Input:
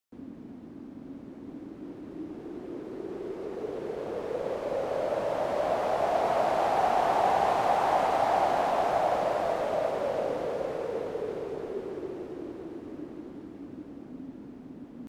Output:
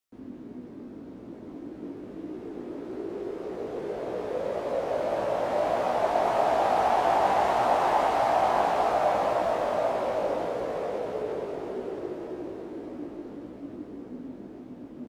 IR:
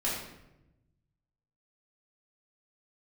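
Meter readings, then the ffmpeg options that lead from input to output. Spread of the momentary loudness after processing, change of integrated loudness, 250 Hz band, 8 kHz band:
19 LU, +1.5 dB, +2.0 dB, +1.5 dB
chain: -filter_complex "[0:a]asplit=9[link_01][link_02][link_03][link_04][link_05][link_06][link_07][link_08][link_09];[link_02]adelay=131,afreqshift=69,volume=-9.5dB[link_10];[link_03]adelay=262,afreqshift=138,volume=-13.4dB[link_11];[link_04]adelay=393,afreqshift=207,volume=-17.3dB[link_12];[link_05]adelay=524,afreqshift=276,volume=-21.1dB[link_13];[link_06]adelay=655,afreqshift=345,volume=-25dB[link_14];[link_07]adelay=786,afreqshift=414,volume=-28.9dB[link_15];[link_08]adelay=917,afreqshift=483,volume=-32.8dB[link_16];[link_09]adelay=1048,afreqshift=552,volume=-36.6dB[link_17];[link_01][link_10][link_11][link_12][link_13][link_14][link_15][link_16][link_17]amix=inputs=9:normalize=0,flanger=delay=16:depth=4.1:speed=1.7,asplit=2[link_18][link_19];[1:a]atrim=start_sample=2205[link_20];[link_19][link_20]afir=irnorm=-1:irlink=0,volume=-16.5dB[link_21];[link_18][link_21]amix=inputs=2:normalize=0,volume=2.5dB"

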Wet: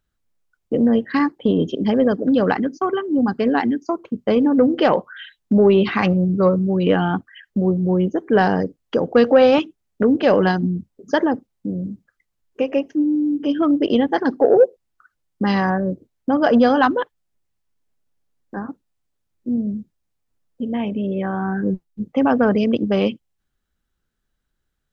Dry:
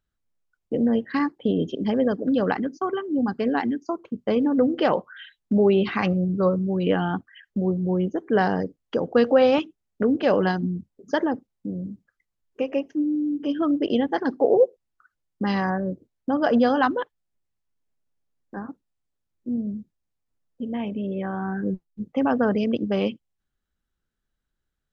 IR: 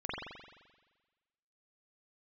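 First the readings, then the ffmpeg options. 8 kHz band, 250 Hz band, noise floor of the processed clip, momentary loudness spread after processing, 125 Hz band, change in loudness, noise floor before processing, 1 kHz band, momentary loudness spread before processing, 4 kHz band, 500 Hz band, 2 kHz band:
can't be measured, +5.0 dB, −75 dBFS, 13 LU, +5.0 dB, +5.0 dB, −81 dBFS, +5.0 dB, 13 LU, +5.0 dB, +5.0 dB, +5.0 dB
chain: -af "acontrast=36"

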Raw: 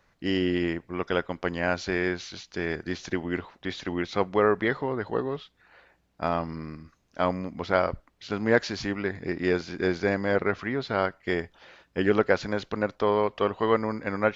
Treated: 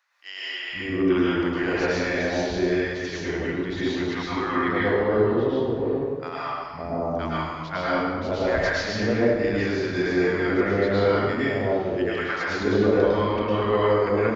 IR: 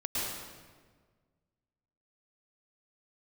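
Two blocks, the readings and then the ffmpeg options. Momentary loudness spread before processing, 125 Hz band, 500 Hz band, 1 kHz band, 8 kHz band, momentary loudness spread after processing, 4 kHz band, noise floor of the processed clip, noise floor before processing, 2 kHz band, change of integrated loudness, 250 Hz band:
10 LU, +5.0 dB, +4.5 dB, +2.5 dB, can't be measured, 9 LU, +4.0 dB, −34 dBFS, −68 dBFS, +3.5 dB, +4.0 dB, +5.0 dB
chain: -filter_complex "[0:a]acrossover=split=210|860[link_01][link_02][link_03];[link_01]adelay=510[link_04];[link_02]adelay=560[link_05];[link_04][link_05][link_03]amix=inputs=3:normalize=0[link_06];[1:a]atrim=start_sample=2205[link_07];[link_06][link_07]afir=irnorm=-1:irlink=0,volume=-1.5dB"

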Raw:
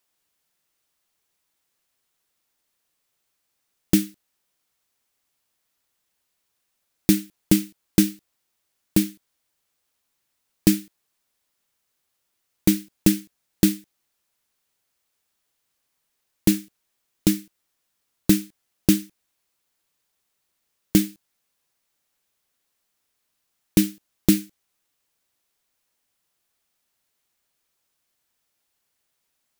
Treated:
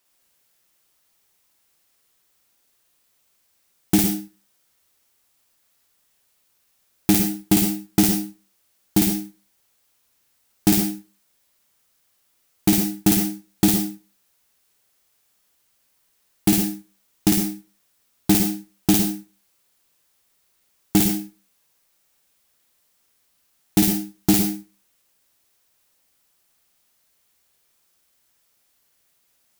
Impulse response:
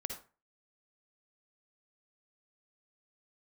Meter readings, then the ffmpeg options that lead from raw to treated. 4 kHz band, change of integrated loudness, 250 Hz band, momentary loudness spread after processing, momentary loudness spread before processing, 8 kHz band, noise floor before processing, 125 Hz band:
+4.0 dB, +2.5 dB, +1.5 dB, 10 LU, 7 LU, +5.0 dB, −76 dBFS, +1.5 dB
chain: -filter_complex "[0:a]asoftclip=type=tanh:threshold=-14.5dB,asplit=2[link_01][link_02];[1:a]atrim=start_sample=2205,highshelf=frequency=6500:gain=7,adelay=53[link_03];[link_02][link_03]afir=irnorm=-1:irlink=0,volume=-1.5dB[link_04];[link_01][link_04]amix=inputs=2:normalize=0,volume=5dB"

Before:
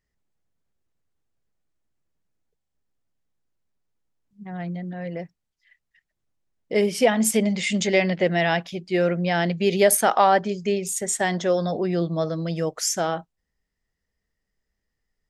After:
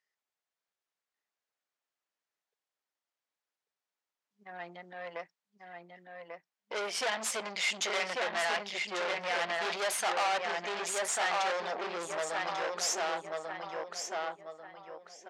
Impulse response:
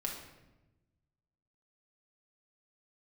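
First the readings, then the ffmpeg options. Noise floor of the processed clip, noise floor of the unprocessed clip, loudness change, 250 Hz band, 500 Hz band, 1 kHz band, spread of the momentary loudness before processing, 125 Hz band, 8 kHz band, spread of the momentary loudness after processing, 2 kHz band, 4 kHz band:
below −85 dBFS, −81 dBFS, −10.5 dB, −23.5 dB, −13.0 dB, −8.0 dB, 14 LU, −29.0 dB, −9.0 dB, 19 LU, −5.0 dB, −3.5 dB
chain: -filter_complex "[0:a]asplit=2[link_01][link_02];[link_02]adelay=1142,lowpass=frequency=3200:poles=1,volume=-4.5dB,asplit=2[link_03][link_04];[link_04]adelay=1142,lowpass=frequency=3200:poles=1,volume=0.36,asplit=2[link_05][link_06];[link_06]adelay=1142,lowpass=frequency=3200:poles=1,volume=0.36,asplit=2[link_07][link_08];[link_08]adelay=1142,lowpass=frequency=3200:poles=1,volume=0.36,asplit=2[link_09][link_10];[link_10]adelay=1142,lowpass=frequency=3200:poles=1,volume=0.36[link_11];[link_03][link_05][link_07][link_09][link_11]amix=inputs=5:normalize=0[link_12];[link_01][link_12]amix=inputs=2:normalize=0,aeval=exprs='(tanh(22.4*val(0)+0.7)-tanh(0.7))/22.4':channel_layout=same,highpass=770,lowpass=7000,volume=2.5dB"

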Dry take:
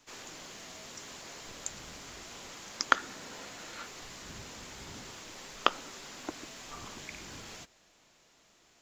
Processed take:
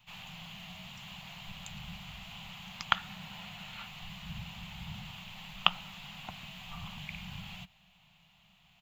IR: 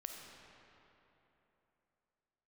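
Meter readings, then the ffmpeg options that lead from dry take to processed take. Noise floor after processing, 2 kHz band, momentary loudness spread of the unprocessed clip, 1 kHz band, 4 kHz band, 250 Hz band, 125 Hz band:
−65 dBFS, −1.5 dB, 14 LU, −3.0 dB, +3.5 dB, +0.5 dB, +8.5 dB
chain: -af "firequalizer=gain_entry='entry(110,0);entry(180,7);entry(280,-29);entry(410,-29);entry(750,-5);entry(1600,-13);entry(2800,2);entry(5500,-21);entry(10000,-14);entry(14000,-3)':delay=0.05:min_phase=1,volume=6dB"

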